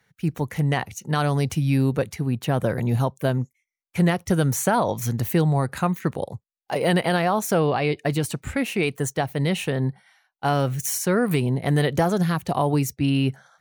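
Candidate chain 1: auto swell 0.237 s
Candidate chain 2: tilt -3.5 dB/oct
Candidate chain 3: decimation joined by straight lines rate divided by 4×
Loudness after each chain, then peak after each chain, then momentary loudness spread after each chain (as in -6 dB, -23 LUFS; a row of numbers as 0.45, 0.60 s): -26.0, -16.5, -23.5 LUFS; -10.5, -1.5, -10.0 dBFS; 13, 7, 6 LU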